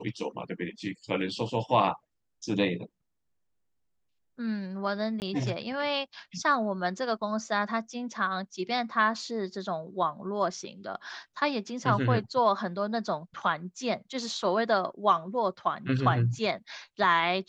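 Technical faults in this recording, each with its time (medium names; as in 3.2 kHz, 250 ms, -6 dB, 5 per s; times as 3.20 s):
5.20–5.22 s: dropout 19 ms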